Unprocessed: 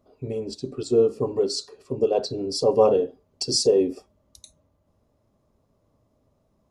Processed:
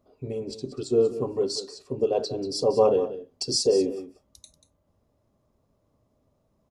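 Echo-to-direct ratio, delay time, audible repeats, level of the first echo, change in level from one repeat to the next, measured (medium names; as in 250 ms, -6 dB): -13.0 dB, 187 ms, 1, -13.0 dB, no regular repeats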